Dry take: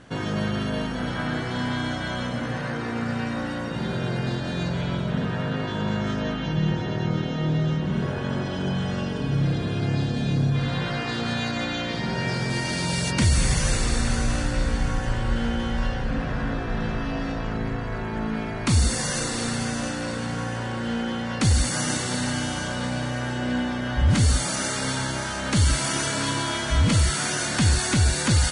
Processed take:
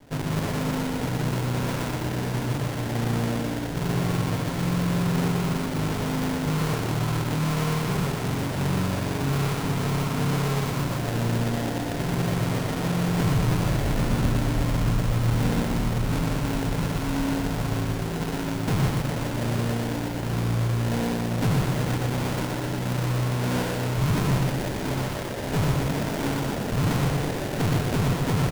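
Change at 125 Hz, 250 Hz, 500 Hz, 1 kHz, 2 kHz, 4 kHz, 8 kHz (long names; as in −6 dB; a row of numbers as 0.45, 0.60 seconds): +1.0, +0.5, +1.5, +0.5, −4.0, −5.0, −8.0 decibels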